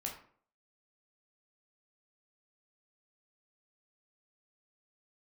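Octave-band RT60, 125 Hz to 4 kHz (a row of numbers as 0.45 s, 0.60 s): 0.50 s, 0.55 s, 0.55 s, 0.50 s, 0.45 s, 0.30 s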